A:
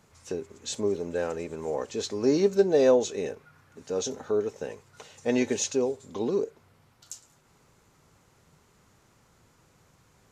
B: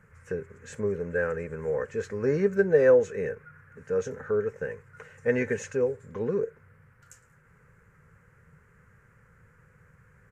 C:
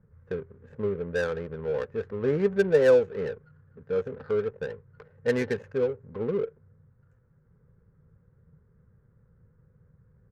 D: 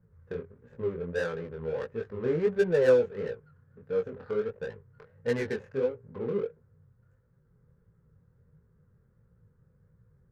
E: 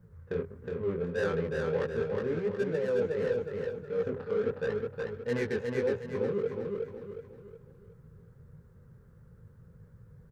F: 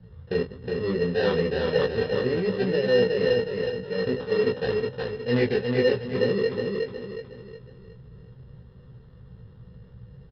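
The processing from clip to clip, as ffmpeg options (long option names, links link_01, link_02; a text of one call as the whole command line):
ffmpeg -i in.wav -af "firequalizer=gain_entry='entry(160,0);entry(300,-17);entry(480,-1);entry(680,-17);entry(1600,5);entry(3600,-27);entry(8100,-15)':delay=0.05:min_phase=1,volume=6dB" out.wav
ffmpeg -i in.wav -af "adynamicsmooth=sensitivity=3.5:basefreq=510" out.wav
ffmpeg -i in.wav -af "flanger=delay=17:depth=7.8:speed=1.5" out.wav
ffmpeg -i in.wav -af "areverse,acompressor=threshold=-35dB:ratio=8,areverse,aecho=1:1:365|730|1095|1460|1825:0.668|0.267|0.107|0.0428|0.0171,volume=7dB" out.wav
ffmpeg -i in.wav -filter_complex "[0:a]acrossover=split=420|1600[link_01][link_02][link_03];[link_02]acrusher=samples=19:mix=1:aa=0.000001[link_04];[link_01][link_04][link_03]amix=inputs=3:normalize=0,aresample=11025,aresample=44100,asplit=2[link_05][link_06];[link_06]adelay=16,volume=-4dB[link_07];[link_05][link_07]amix=inputs=2:normalize=0,volume=6.5dB" out.wav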